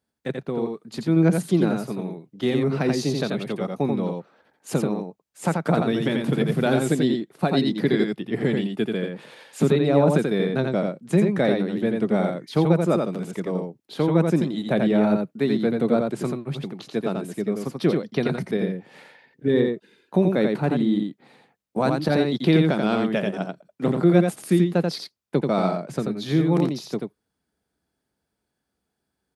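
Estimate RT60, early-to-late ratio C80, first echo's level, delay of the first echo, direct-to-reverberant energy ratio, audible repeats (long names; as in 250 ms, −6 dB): no reverb audible, no reverb audible, −4.0 dB, 86 ms, no reverb audible, 1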